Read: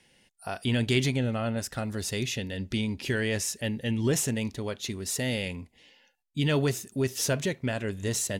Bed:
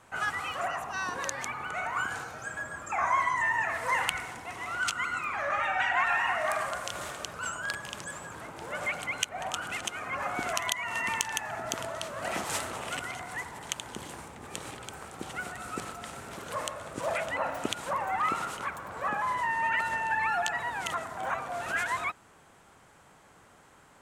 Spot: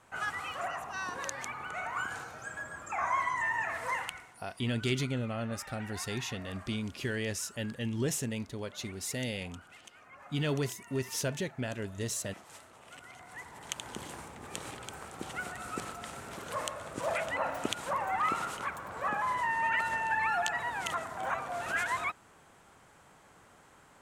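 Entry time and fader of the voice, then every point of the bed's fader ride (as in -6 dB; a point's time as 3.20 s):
3.95 s, -6.0 dB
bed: 3.87 s -4 dB
4.43 s -19.5 dB
12.71 s -19.5 dB
13.87 s -1.5 dB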